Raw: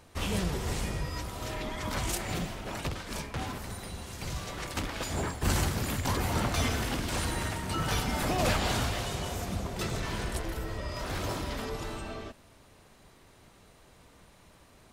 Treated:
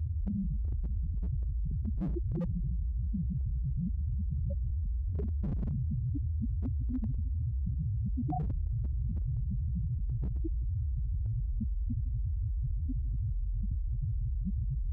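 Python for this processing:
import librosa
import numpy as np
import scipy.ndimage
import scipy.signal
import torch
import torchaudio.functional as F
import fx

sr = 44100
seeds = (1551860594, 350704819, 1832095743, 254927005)

p1 = fx.tracing_dist(x, sr, depth_ms=0.057)
p2 = fx.low_shelf(p1, sr, hz=350.0, db=6.0)
p3 = p2 + fx.echo_diffused(p2, sr, ms=809, feedback_pct=57, wet_db=-6.0, dry=0)
p4 = fx.spec_topn(p3, sr, count=1)
p5 = fx.rider(p4, sr, range_db=4, speed_s=2.0)
p6 = fx.tremolo_random(p5, sr, seeds[0], hz=3.5, depth_pct=95)
p7 = fx.echo_feedback(p6, sr, ms=157, feedback_pct=57, wet_db=-17.5)
p8 = fx.spec_gate(p7, sr, threshold_db=-25, keep='strong')
p9 = scipy.signal.sosfilt(scipy.signal.butter(4, 44.0, 'highpass', fs=sr, output='sos'), p8)
p10 = fx.peak_eq(p9, sr, hz=94.0, db=-11.0, octaves=0.32)
p11 = 10.0 ** (-35.5 / 20.0) * (np.abs((p10 / 10.0 ** (-35.5 / 20.0) + 3.0) % 4.0 - 2.0) - 1.0)
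p12 = fx.env_flatten(p11, sr, amount_pct=100)
y = p12 * librosa.db_to_amplitude(6.5)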